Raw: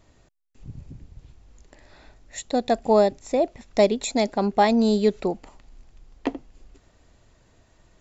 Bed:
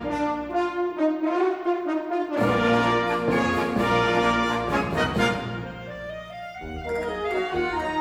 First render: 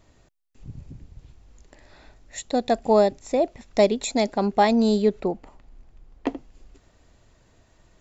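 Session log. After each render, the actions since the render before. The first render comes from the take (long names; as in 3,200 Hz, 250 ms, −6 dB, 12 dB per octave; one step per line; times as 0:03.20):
0:05.02–0:06.27: high-shelf EQ 2,900 Hz −10.5 dB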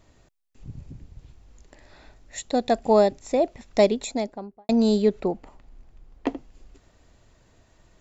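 0:03.82–0:04.69: fade out and dull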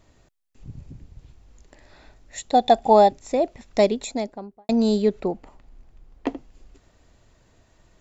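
0:02.52–0:03.10: hollow resonant body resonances 790/3,500 Hz, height 15 dB → 12 dB, ringing for 25 ms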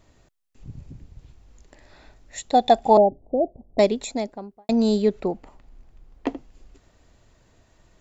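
0:02.97–0:03.79: elliptic low-pass filter 720 Hz, stop band 70 dB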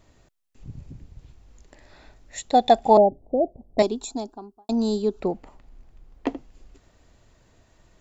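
0:03.82–0:05.21: phaser with its sweep stopped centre 550 Hz, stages 6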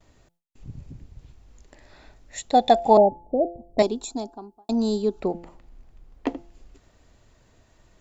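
hum removal 171.8 Hz, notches 5
noise gate with hold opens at −53 dBFS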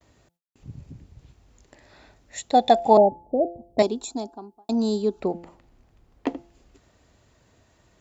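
noise gate with hold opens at −51 dBFS
high-pass filter 61 Hz 12 dB per octave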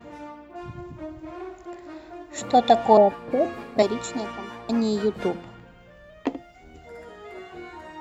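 mix in bed −14.5 dB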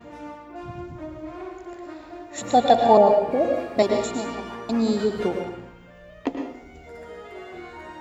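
dense smooth reverb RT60 0.69 s, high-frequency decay 0.75×, pre-delay 95 ms, DRR 3.5 dB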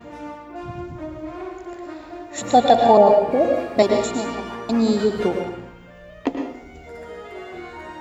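level +3.5 dB
brickwall limiter −3 dBFS, peak gain reduction 3 dB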